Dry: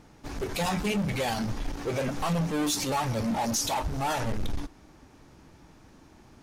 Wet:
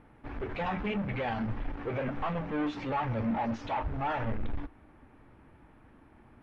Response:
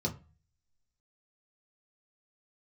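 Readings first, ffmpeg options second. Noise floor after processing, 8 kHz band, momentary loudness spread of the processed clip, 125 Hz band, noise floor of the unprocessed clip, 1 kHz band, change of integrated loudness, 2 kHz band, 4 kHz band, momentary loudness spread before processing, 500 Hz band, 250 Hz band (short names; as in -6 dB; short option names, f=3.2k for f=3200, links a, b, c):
-58 dBFS, under -30 dB, 8 LU, -4.0 dB, -55 dBFS, -2.5 dB, -4.5 dB, -3.0 dB, -14.0 dB, 9 LU, -4.0 dB, -3.5 dB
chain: -filter_complex "[0:a]lowpass=f=2.3k:w=0.5412,lowpass=f=2.3k:w=1.3066,equalizer=f=160:w=4:g=-6.5,acontrast=39,crystalizer=i=2:c=0,asplit=2[a][b];[1:a]atrim=start_sample=2205[c];[b][c]afir=irnorm=-1:irlink=0,volume=-25.5dB[d];[a][d]amix=inputs=2:normalize=0,volume=-8.5dB" -ar 44100 -c:a mp2 -b:a 64k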